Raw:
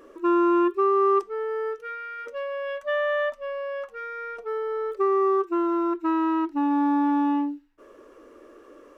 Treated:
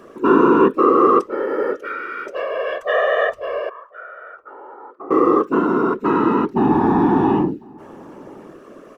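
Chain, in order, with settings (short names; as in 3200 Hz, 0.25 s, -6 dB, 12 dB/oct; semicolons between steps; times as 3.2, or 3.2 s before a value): 3.69–5.11 auto-wah 680–1500 Hz, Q 8.1, down, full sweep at -20.5 dBFS; whisperiser; outdoor echo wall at 180 m, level -25 dB; gain +7 dB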